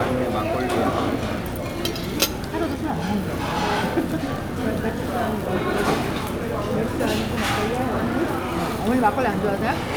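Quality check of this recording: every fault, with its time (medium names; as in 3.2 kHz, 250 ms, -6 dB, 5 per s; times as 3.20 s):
crackle 100 per s -30 dBFS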